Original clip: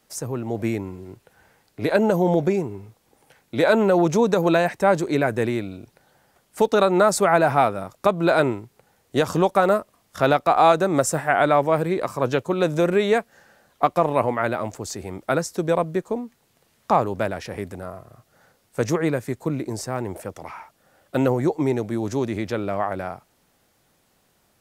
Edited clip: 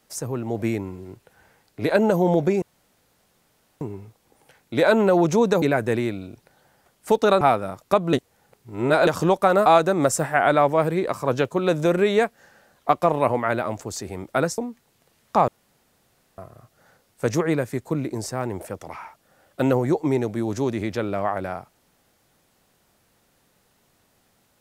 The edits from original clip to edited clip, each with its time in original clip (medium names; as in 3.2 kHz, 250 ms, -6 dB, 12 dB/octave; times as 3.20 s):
2.62 s: insert room tone 1.19 s
4.43–5.12 s: delete
6.91–7.54 s: delete
8.26–9.20 s: reverse
9.79–10.60 s: delete
15.52–16.13 s: delete
17.03–17.93 s: room tone